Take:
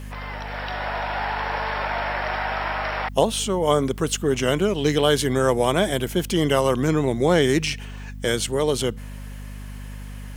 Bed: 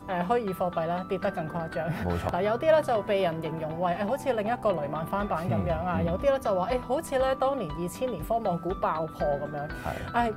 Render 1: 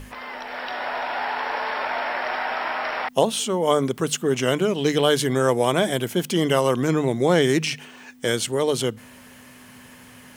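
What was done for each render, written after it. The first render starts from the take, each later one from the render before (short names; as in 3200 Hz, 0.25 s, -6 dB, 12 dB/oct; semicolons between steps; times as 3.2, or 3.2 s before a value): notches 50/100/150/200 Hz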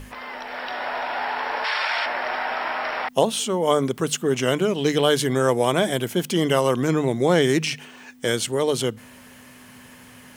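1.64–2.06 weighting filter ITU-R 468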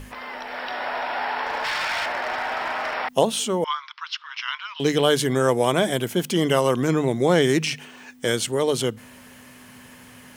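1.46–2.94 hard clip -21.5 dBFS; 3.64–4.8 Chebyshev band-pass 960–5300 Hz, order 5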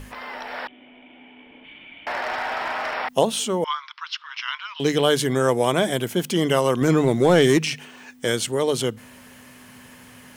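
0.67–2.07 vocal tract filter i; 6.81–7.58 sample leveller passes 1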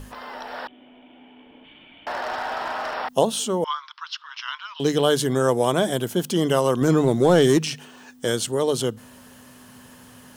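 bell 2200 Hz -9.5 dB 0.55 oct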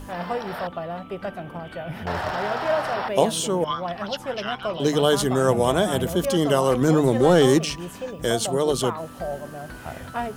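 add bed -2.5 dB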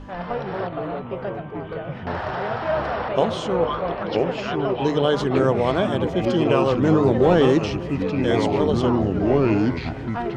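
air absorption 180 m; echoes that change speed 0.149 s, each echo -4 st, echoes 2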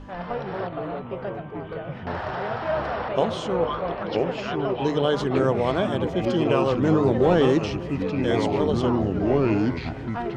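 gain -2.5 dB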